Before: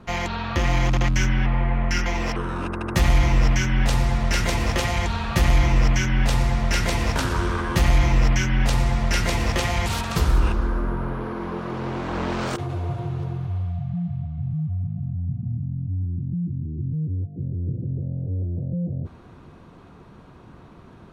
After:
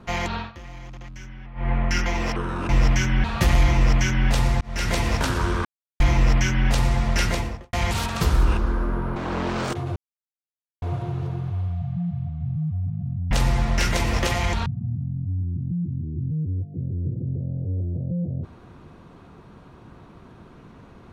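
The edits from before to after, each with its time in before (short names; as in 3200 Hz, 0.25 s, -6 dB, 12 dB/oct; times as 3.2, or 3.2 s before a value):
0.37–1.7 dip -19 dB, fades 0.15 s
2.69–3.29 cut
3.84–5.19 move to 15.28
6.56–6.87 fade in
7.6–7.95 mute
9.19–9.68 studio fade out
11.11–11.99 cut
12.79 insert silence 0.86 s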